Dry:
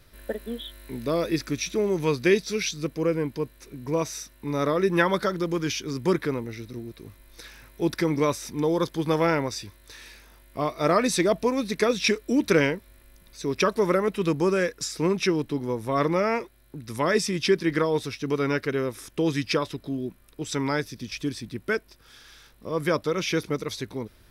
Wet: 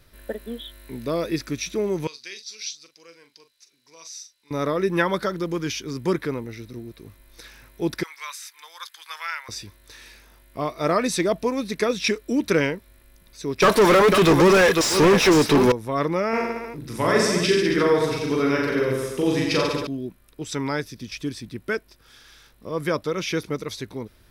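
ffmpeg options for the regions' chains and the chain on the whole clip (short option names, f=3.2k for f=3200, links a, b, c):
-filter_complex "[0:a]asettb=1/sr,asplit=3[a][b][c];[a]atrim=end=2.074[d];[b]atrim=start=2.07:end=4.51,asetpts=PTS-STARTPTS,afade=t=in:d=0.004:c=qsin,afade=t=out:st=2.436:d=0.004:c=qsin,bandpass=f=5k:t=q:w=2,asplit=2[e][f];[f]adelay=42,volume=-10dB[g];[e][g]amix=inputs=2:normalize=0,atrim=end_sample=107604[h];[c]atrim=start=4.506[i];[d][h]acrossfade=d=0.004:c1=hsin:c2=qsin[j];[j][i]acrossfade=d=0.004:c1=qsin:c2=hsin,asettb=1/sr,asplit=3[k][l][m];[k]atrim=end=8.034[n];[l]atrim=start=8.03:end=9.49,asetpts=PTS-STARTPTS,afade=t=in:d=0.004:c=qsin,afade=t=out:st=1.456:d=0.004:c=qsin,highpass=f=1.3k:w=0.5412,highpass=f=1.3k:w=1.3066,bandreject=f=5.7k:w=19[o];[m]atrim=start=9.486[p];[n][o]acrossfade=d=0.004:c1=hsin:c2=qsin[q];[q][p]acrossfade=d=0.004:c1=qsin:c2=hsin,asettb=1/sr,asplit=3[r][s][t];[r]atrim=end=13.624[u];[s]atrim=start=13.62:end=15.72,asetpts=PTS-STARTPTS,afade=t=in:d=0.004:c=qsin,afade=t=out:st=2.096:d=0.004:c=qsin,highshelf=f=3.5k:g=12,aecho=1:1:497:0.2,atrim=end_sample=92610,asplit=2[v][w];[w]highpass=f=720:p=1,volume=34dB,asoftclip=type=tanh:threshold=-7dB[x];[v][x]amix=inputs=2:normalize=0,lowpass=f=1.8k:p=1,volume=-6dB[y];[t]atrim=start=15.716[z];[u][y]acrossfade=d=0.004:c1=hsin:c2=qsin[aa];[aa][z]acrossfade=d=0.004:c1=qsin:c2=hsin,asettb=1/sr,asplit=3[ab][ac][ad];[ab]atrim=end=16.294[ae];[ac]atrim=start=16.29:end=19.87,asetpts=PTS-STARTPTS,afade=t=in:d=0.004:c=qsin,afade=t=out:st=3.576:d=0.004:c=qsin,asplit=2[af][ag];[ag]adelay=17,volume=-11dB[ah];[af][ah]amix=inputs=2:normalize=0,atrim=end_sample=157878,aecho=1:1:40|86|138.9|199.7|269.7|350.1:0.794|0.631|0.501|0.398|0.316|0.251,atrim=end_sample=157878[ai];[ad]atrim=start=19.866[aj];[ae][ai]acrossfade=d=0.004:c1=hsin:c2=qsin[ak];[ak][aj]acrossfade=d=0.004:c1=qsin:c2=hsin"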